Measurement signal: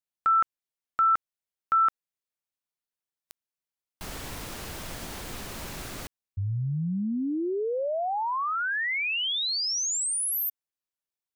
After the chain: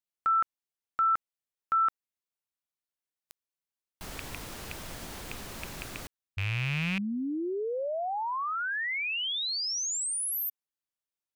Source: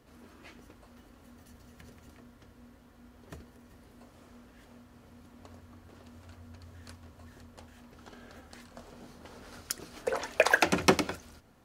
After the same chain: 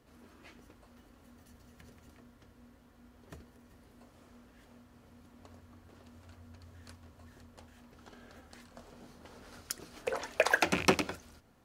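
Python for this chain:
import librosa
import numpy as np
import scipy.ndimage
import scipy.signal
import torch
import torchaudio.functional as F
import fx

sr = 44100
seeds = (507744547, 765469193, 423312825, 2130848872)

y = fx.rattle_buzz(x, sr, strikes_db=-35.0, level_db=-18.0)
y = y * librosa.db_to_amplitude(-3.5)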